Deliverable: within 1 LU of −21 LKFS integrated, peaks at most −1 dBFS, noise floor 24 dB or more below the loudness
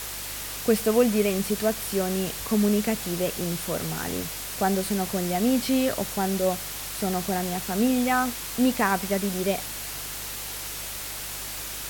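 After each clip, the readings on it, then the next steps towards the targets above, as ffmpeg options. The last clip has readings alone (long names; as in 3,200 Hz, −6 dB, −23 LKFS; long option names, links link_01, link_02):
mains hum 50 Hz; hum harmonics up to 150 Hz; level of the hum −44 dBFS; background noise floor −35 dBFS; target noise floor −50 dBFS; integrated loudness −26.0 LKFS; sample peak −8.0 dBFS; target loudness −21.0 LKFS
→ -af "bandreject=frequency=50:width_type=h:width=4,bandreject=frequency=100:width_type=h:width=4,bandreject=frequency=150:width_type=h:width=4"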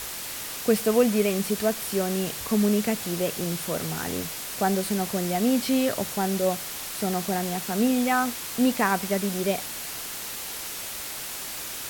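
mains hum none found; background noise floor −35 dBFS; target noise floor −50 dBFS
→ -af "afftdn=noise_reduction=15:noise_floor=-35"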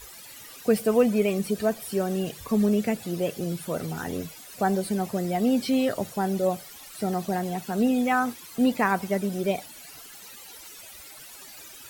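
background noise floor −45 dBFS; target noise floor −51 dBFS
→ -af "afftdn=noise_reduction=6:noise_floor=-45"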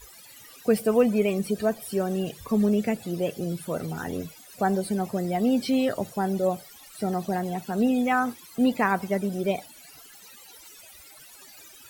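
background noise floor −49 dBFS; target noise floor −51 dBFS
→ -af "afftdn=noise_reduction=6:noise_floor=-49"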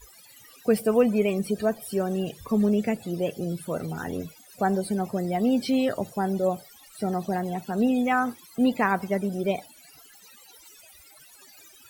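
background noise floor −53 dBFS; integrated loudness −26.5 LKFS; sample peak −8.5 dBFS; target loudness −21.0 LKFS
→ -af "volume=5.5dB"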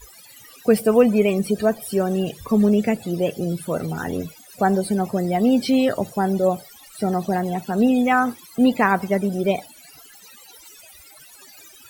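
integrated loudness −21.0 LKFS; sample peak −3.0 dBFS; background noise floor −47 dBFS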